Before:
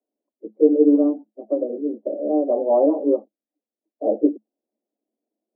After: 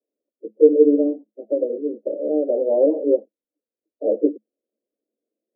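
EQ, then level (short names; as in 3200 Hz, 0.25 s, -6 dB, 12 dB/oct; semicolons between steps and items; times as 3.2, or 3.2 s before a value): ladder low-pass 560 Hz, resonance 60%; +5.0 dB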